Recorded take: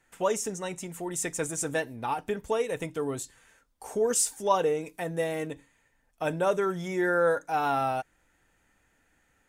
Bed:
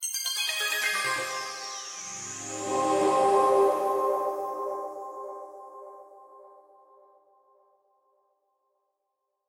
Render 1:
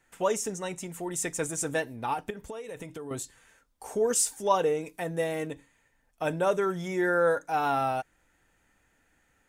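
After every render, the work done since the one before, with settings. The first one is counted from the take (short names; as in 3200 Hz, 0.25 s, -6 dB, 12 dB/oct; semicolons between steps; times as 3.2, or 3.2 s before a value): 2.3–3.11 compressor 12:1, threshold -35 dBFS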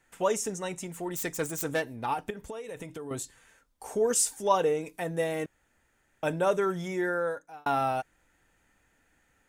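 0.9–2.06 self-modulated delay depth 0.07 ms; 5.46–6.23 room tone; 6.8–7.66 fade out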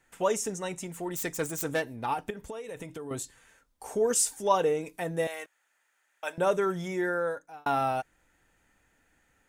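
5.27–6.38 HPF 880 Hz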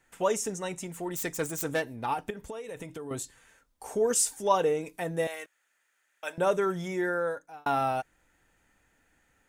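5.35–6.3 bell 850 Hz -5.5 dB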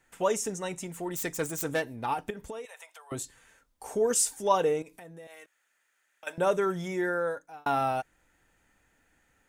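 2.65–3.12 steep high-pass 680 Hz; 4.82–6.27 compressor 5:1, threshold -46 dBFS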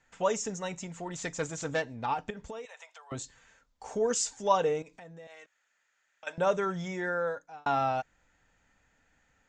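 Chebyshev low-pass 7300 Hz, order 5; bell 350 Hz -7.5 dB 0.46 oct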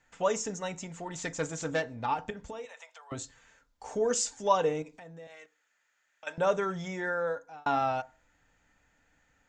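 FDN reverb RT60 0.35 s, low-frequency decay 1×, high-frequency decay 0.35×, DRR 13.5 dB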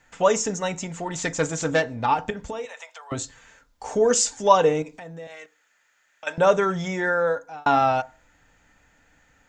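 gain +9 dB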